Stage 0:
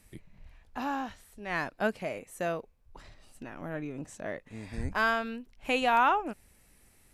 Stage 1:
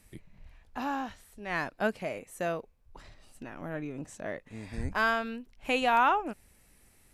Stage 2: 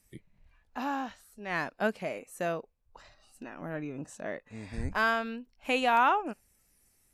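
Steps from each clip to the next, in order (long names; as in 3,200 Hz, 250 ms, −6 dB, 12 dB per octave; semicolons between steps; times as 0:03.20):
no processing that can be heard
noise reduction from a noise print of the clip's start 10 dB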